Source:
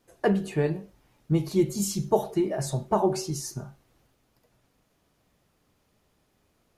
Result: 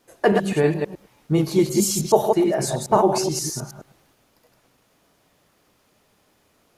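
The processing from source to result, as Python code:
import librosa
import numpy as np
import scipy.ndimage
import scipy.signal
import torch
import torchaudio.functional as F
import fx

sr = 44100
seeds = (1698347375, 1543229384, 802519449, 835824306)

y = fx.reverse_delay(x, sr, ms=106, wet_db=-3.5)
y = fx.low_shelf(y, sr, hz=170.0, db=-10.5)
y = y * 10.0 ** (7.5 / 20.0)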